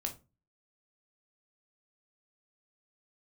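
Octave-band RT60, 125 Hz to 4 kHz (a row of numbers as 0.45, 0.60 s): 0.50, 0.40, 0.30, 0.25, 0.20, 0.20 s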